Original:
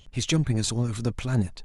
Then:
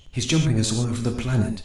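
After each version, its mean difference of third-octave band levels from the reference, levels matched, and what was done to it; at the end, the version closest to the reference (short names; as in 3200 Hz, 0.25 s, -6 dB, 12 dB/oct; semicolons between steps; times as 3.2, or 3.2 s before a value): 4.0 dB: non-linear reverb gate 0.16 s flat, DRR 4 dB; gain +2 dB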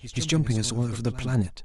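2.0 dB: pre-echo 0.132 s -12.5 dB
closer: second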